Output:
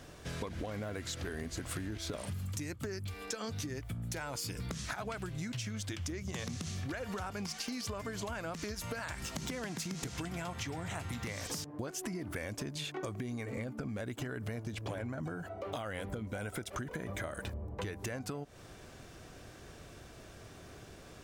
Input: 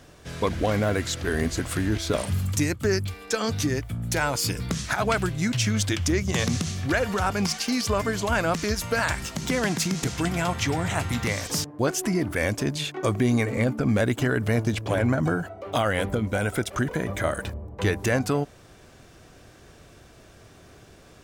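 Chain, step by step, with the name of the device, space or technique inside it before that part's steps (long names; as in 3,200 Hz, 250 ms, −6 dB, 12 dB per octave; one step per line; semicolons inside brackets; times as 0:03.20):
serial compression, peaks first (downward compressor, threshold −29 dBFS, peak gain reduction 11 dB; downward compressor 3 to 1, threshold −36 dBFS, peak gain reduction 7.5 dB)
level −1.5 dB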